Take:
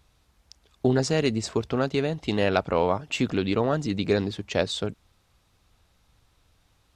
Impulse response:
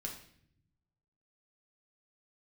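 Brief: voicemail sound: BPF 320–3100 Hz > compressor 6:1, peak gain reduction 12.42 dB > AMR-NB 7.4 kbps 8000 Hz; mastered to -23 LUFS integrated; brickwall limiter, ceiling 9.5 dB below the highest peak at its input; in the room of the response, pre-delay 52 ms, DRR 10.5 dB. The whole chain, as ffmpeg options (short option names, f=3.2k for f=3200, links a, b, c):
-filter_complex "[0:a]alimiter=limit=-16dB:level=0:latency=1,asplit=2[a][b];[1:a]atrim=start_sample=2205,adelay=52[c];[b][c]afir=irnorm=-1:irlink=0,volume=-9dB[d];[a][d]amix=inputs=2:normalize=0,highpass=320,lowpass=3.1k,acompressor=threshold=-35dB:ratio=6,volume=17.5dB" -ar 8000 -c:a libopencore_amrnb -b:a 7400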